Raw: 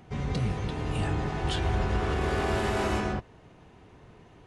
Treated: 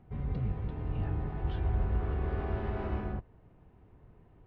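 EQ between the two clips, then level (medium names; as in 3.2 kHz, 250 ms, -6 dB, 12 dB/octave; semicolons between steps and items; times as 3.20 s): distance through air 210 m; tape spacing loss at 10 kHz 25 dB; bass shelf 84 Hz +11.5 dB; -8.0 dB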